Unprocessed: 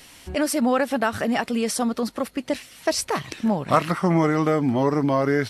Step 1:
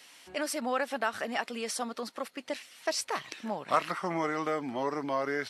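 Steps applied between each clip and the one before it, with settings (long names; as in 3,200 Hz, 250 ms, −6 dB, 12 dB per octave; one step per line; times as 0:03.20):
meter weighting curve A
level −7 dB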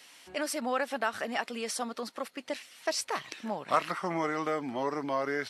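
no processing that can be heard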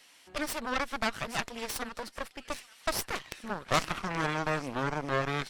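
delay with a high-pass on its return 827 ms, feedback 44%, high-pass 2,000 Hz, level −12.5 dB
harmonic generator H 3 −18 dB, 8 −13 dB, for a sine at −12 dBFS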